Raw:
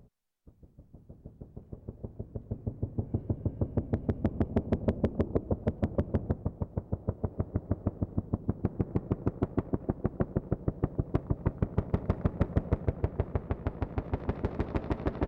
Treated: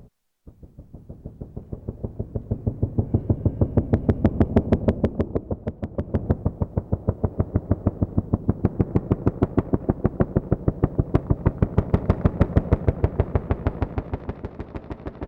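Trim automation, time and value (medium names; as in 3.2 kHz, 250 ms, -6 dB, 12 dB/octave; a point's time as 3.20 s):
4.65 s +10.5 dB
5.88 s -0.5 dB
6.30 s +9.5 dB
13.76 s +9.5 dB
14.52 s -2 dB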